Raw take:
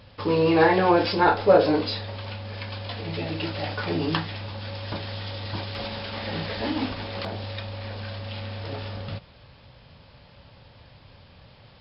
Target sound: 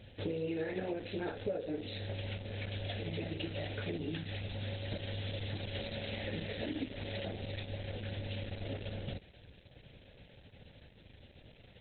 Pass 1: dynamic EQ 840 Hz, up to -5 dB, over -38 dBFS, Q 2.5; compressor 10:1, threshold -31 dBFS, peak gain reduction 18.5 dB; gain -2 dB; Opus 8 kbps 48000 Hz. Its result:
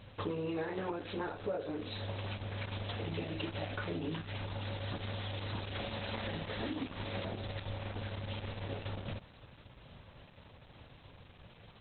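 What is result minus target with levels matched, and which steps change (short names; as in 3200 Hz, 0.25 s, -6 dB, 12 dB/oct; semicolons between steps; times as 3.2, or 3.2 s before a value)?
1000 Hz band +6.5 dB
add after dynamic EQ: Butterworth band-stop 1100 Hz, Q 1.3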